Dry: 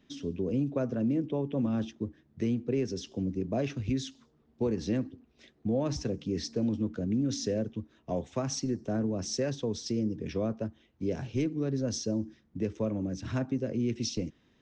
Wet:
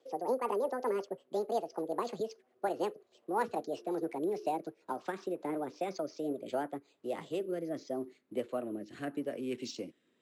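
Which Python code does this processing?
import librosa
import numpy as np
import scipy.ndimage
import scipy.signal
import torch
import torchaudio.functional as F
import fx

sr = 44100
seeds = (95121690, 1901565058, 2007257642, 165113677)

y = fx.speed_glide(x, sr, from_pct=186, to_pct=100)
y = fx.dynamic_eq(y, sr, hz=1300.0, q=1.2, threshold_db=-46.0, ratio=4.0, max_db=5)
y = fx.rotary_switch(y, sr, hz=5.5, then_hz=0.8, switch_at_s=6.13)
y = np.repeat(scipy.signal.resample_poly(y, 1, 4), 4)[:len(y)]
y = fx.bandpass_edges(y, sr, low_hz=360.0, high_hz=6900.0)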